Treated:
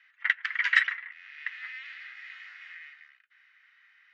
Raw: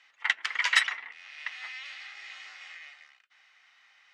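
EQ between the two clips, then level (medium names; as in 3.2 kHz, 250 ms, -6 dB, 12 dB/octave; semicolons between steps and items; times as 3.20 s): ladder band-pass 1.9 kHz, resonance 55%; +7.5 dB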